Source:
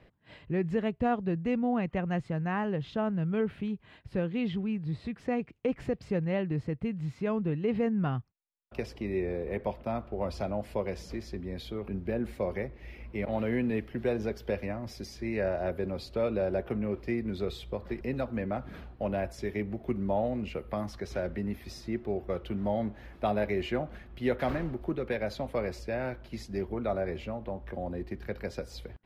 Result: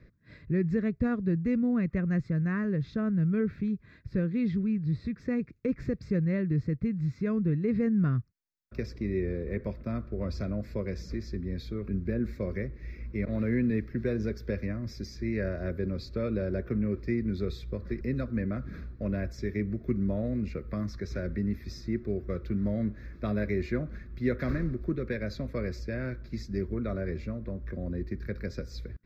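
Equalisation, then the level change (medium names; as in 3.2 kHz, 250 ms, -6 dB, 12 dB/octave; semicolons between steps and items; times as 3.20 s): bass shelf 300 Hz +6.5 dB; static phaser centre 3 kHz, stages 6; 0.0 dB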